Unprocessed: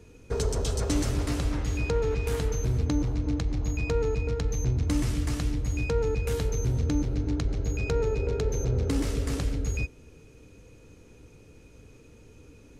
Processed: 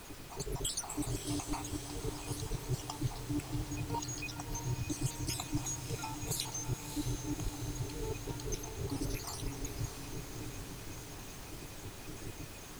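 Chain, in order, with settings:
time-frequency cells dropped at random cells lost 67%
high-shelf EQ 5,100 Hz +6.5 dB
reversed playback
downward compressor 10 to 1, threshold −41 dBFS, peak gain reduction 20 dB
reversed playback
phaser with its sweep stopped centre 330 Hz, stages 8
background noise pink −61 dBFS
on a send: feedback delay with all-pass diffusion 623 ms, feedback 67%, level −8 dB
on the sum: level +10.5 dB

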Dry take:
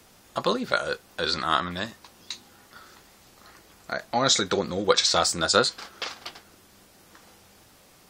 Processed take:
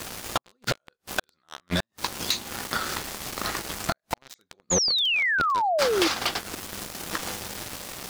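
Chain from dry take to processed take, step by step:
gate with flip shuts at −18 dBFS, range −39 dB
leveller curve on the samples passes 5
downward compressor 10 to 1, threshold −31 dBFS, peak gain reduction 13.5 dB
sound drawn into the spectrogram fall, 0:04.70–0:06.08, 310–7,100 Hz −31 dBFS
level +7.5 dB

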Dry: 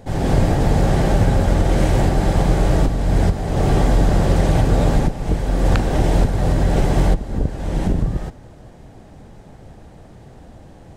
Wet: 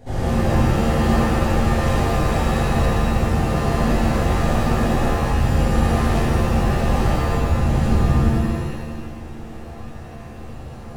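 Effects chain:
brickwall limiter −15.5 dBFS, peak gain reduction 11 dB
reverb with rising layers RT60 1.5 s, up +7 semitones, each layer −2 dB, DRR −8 dB
level −7 dB

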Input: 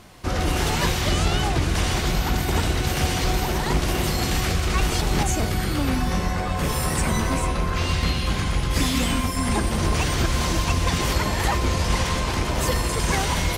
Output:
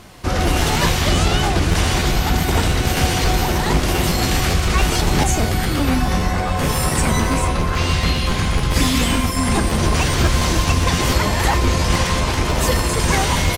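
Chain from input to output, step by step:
double-tracking delay 31 ms −13.5 dB
regular buffer underruns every 0.14 s, samples 512, repeat, from 0:00.45
level +5 dB

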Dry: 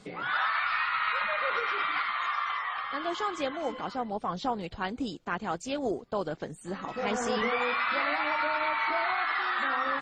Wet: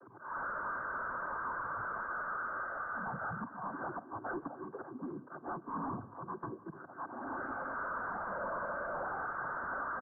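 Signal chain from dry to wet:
frequency inversion band by band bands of 500 Hz
low-shelf EQ 220 Hz −6.5 dB
mains-hum notches 50/100/150/200/250/300 Hz
volume swells 364 ms
cochlear-implant simulation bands 16
soft clipping −38.5 dBFS, distortion −5 dB
Chebyshev low-pass with heavy ripple 1,600 Hz, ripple 3 dB
repeating echo 296 ms, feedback 52%, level −20 dB
on a send at −20 dB: convolution reverb RT60 1.6 s, pre-delay 8 ms
on the sum: level +5 dB

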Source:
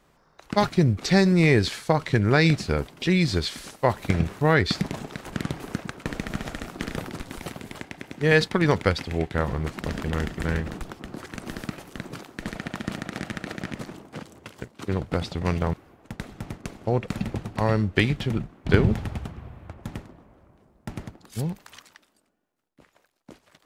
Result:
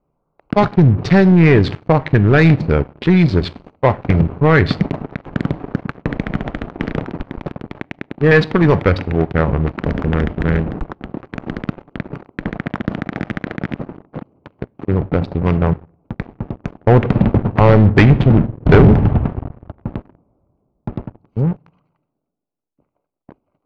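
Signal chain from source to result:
adaptive Wiener filter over 25 samples
0:16.87–0:19.49: leveller curve on the samples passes 2
convolution reverb RT60 0.60 s, pre-delay 7 ms, DRR 16 dB
leveller curve on the samples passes 3
low-pass filter 2,500 Hz 12 dB per octave

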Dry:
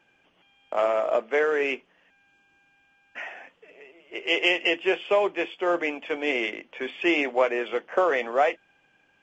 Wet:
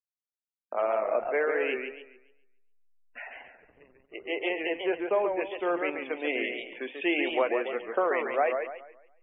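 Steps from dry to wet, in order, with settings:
0:04.16–0:05.41: low-pass filter 1,800 Hz 12 dB per octave
slack as between gear wheels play −40.5 dBFS
spectral peaks only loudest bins 64
feedback echo with a swinging delay time 140 ms, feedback 34%, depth 164 cents, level −5.5 dB
level −4.5 dB

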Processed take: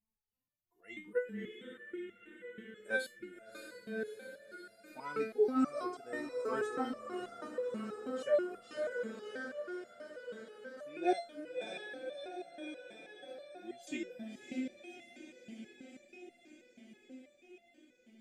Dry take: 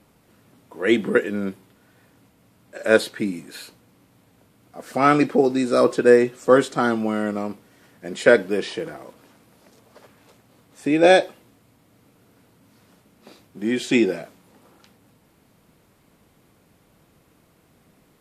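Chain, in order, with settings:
spectral dynamics exaggerated over time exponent 1.5
feedback delay with all-pass diffusion 616 ms, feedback 71%, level −6 dB
step-sequenced resonator 6.2 Hz 220–690 Hz
level −1.5 dB

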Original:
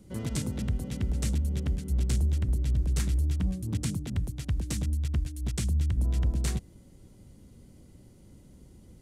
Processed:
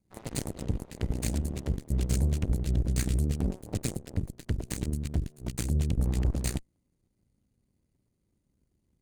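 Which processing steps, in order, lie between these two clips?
lower of the sound and its delayed copy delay 0.46 ms
dynamic equaliser 8,200 Hz, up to +5 dB, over −56 dBFS, Q 2.5
harmonic generator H 2 −8 dB, 3 −20 dB, 6 −29 dB, 7 −19 dB, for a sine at −16.5 dBFS

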